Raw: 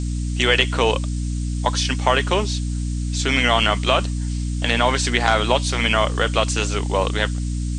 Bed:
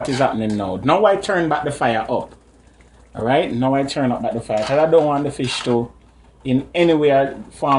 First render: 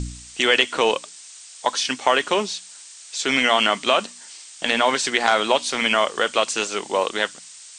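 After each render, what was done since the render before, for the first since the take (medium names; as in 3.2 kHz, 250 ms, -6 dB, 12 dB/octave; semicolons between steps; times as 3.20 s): de-hum 60 Hz, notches 5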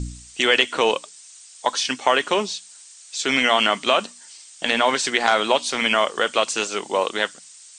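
noise reduction 6 dB, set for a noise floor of -43 dBFS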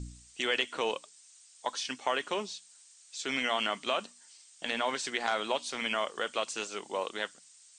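trim -12.5 dB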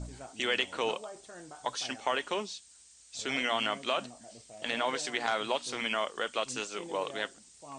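add bed -30.5 dB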